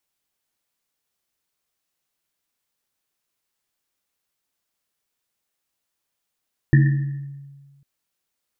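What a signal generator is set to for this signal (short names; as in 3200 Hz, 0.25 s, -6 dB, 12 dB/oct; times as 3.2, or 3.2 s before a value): Risset drum, pitch 140 Hz, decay 1.56 s, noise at 1800 Hz, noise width 160 Hz, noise 10%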